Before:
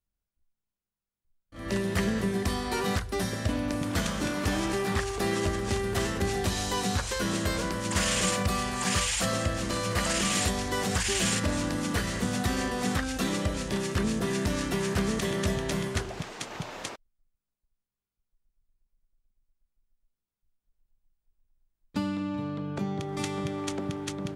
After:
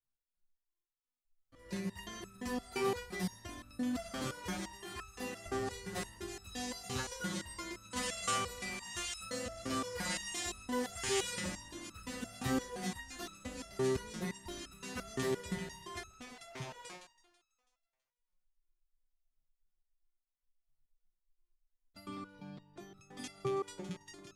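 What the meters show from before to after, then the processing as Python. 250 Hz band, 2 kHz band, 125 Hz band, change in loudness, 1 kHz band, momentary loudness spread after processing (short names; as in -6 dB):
-11.5 dB, -11.0 dB, -15.0 dB, -10.5 dB, -10.0 dB, 13 LU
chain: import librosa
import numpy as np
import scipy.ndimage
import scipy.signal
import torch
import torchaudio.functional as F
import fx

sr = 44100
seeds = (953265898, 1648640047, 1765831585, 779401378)

y = fx.echo_split(x, sr, split_hz=550.0, low_ms=117, high_ms=164, feedback_pct=52, wet_db=-12.5)
y = fx.resonator_held(y, sr, hz=5.8, low_hz=130.0, high_hz=1300.0)
y = F.gain(torch.from_numpy(y), 3.5).numpy()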